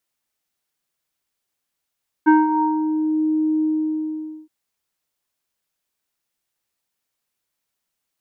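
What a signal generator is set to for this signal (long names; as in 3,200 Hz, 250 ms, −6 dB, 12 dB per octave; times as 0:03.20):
subtractive voice square D#4 24 dB per octave, low-pass 490 Hz, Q 4, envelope 1.5 octaves, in 0.95 s, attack 22 ms, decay 0.19 s, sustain −10.5 dB, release 0.85 s, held 1.37 s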